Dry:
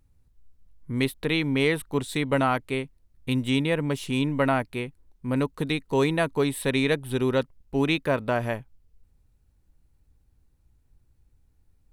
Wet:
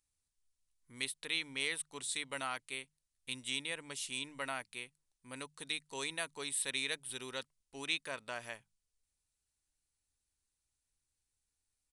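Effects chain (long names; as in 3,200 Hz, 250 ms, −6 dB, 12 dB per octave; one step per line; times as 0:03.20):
first-order pre-emphasis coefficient 0.97
downsampling to 22,050 Hz
mains-hum notches 50/100/150/200 Hz
level +1 dB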